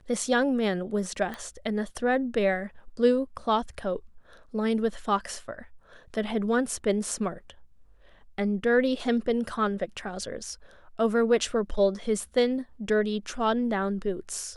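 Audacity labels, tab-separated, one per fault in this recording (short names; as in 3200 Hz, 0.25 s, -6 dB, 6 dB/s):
1.340000	1.340000	pop -22 dBFS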